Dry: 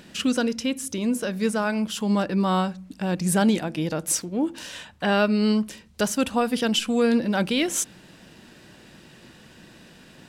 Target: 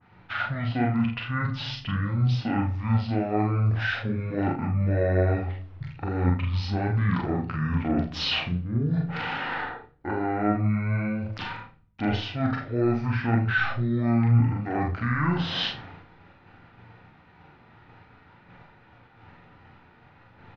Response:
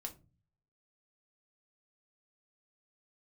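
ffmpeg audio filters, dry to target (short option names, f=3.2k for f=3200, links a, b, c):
-filter_complex "[0:a]lowpass=5.4k,agate=range=-33dB:threshold=-40dB:ratio=3:detection=peak,equalizer=f=89:t=o:w=2.7:g=-8,areverse,acompressor=threshold=-32dB:ratio=6,areverse,flanger=delay=19.5:depth=4.5:speed=0.86,asplit=2[a][b];[b]adelay=17,volume=-8dB[c];[a][c]amix=inputs=2:normalize=0,asplit=2[d][e];[1:a]atrim=start_sample=2205[f];[e][f]afir=irnorm=-1:irlink=0,volume=2.5dB[g];[d][g]amix=inputs=2:normalize=0,asetrate=22050,aresample=44100,adynamicequalizer=threshold=0.00501:dfrequency=2500:dqfactor=0.7:tfrequency=2500:tqfactor=0.7:attack=5:release=100:ratio=0.375:range=2.5:mode=cutabove:tftype=highshelf,volume=6.5dB"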